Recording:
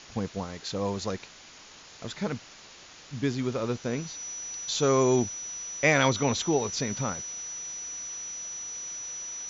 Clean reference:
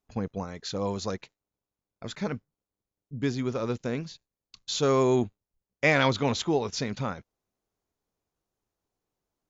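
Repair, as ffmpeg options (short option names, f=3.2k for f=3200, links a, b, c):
-af "bandreject=f=5.9k:w=30,afwtdn=0.0056"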